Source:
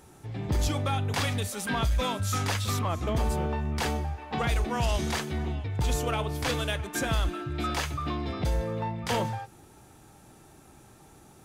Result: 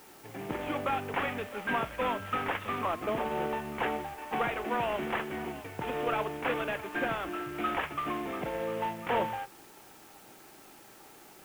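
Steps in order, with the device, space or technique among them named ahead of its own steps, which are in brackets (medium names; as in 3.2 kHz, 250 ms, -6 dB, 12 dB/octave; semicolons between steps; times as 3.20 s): army field radio (band-pass 300–3100 Hz; CVSD coder 16 kbps; white noise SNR 23 dB); trim +1.5 dB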